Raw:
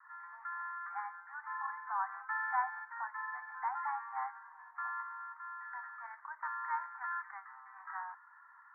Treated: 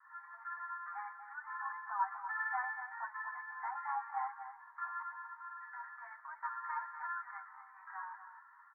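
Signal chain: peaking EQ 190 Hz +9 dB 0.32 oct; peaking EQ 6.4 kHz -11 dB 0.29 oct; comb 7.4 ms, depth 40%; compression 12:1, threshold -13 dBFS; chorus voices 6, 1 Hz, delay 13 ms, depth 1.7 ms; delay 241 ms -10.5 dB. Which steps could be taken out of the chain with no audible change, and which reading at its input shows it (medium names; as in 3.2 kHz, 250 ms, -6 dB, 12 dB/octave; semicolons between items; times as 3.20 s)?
peaking EQ 190 Hz: input has nothing below 680 Hz; peaking EQ 6.4 kHz: input has nothing above 2.2 kHz; compression, threshold -13 dBFS: peak at its input -21.5 dBFS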